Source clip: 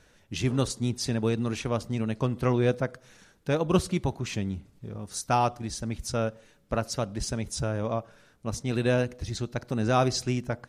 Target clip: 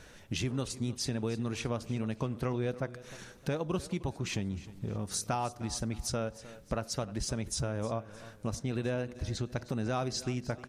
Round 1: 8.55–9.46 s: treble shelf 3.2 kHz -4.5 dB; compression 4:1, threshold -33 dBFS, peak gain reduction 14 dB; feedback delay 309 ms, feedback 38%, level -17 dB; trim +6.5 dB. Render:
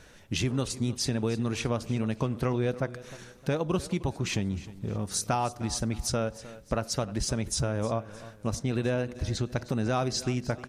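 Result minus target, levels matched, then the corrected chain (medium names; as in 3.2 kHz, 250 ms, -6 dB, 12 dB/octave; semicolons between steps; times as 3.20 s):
compression: peak gain reduction -5 dB
8.55–9.46 s: treble shelf 3.2 kHz -4.5 dB; compression 4:1, threshold -39.5 dBFS, peak gain reduction 19 dB; feedback delay 309 ms, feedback 38%, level -17 dB; trim +6.5 dB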